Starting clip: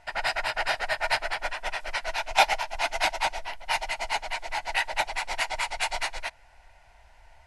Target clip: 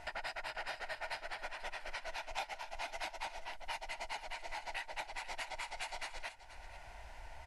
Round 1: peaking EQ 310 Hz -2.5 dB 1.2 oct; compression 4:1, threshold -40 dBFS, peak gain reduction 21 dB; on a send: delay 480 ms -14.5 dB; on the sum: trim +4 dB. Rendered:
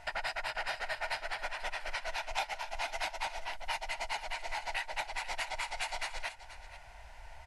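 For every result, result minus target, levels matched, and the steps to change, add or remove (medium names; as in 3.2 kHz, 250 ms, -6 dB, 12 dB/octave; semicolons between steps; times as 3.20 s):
compression: peak gain reduction -6.5 dB; 250 Hz band -5.0 dB
change: compression 4:1, threshold -48 dBFS, peak gain reduction 27 dB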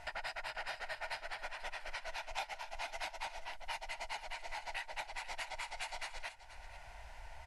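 250 Hz band -4.5 dB
change: peaking EQ 310 Hz +3.5 dB 1.2 oct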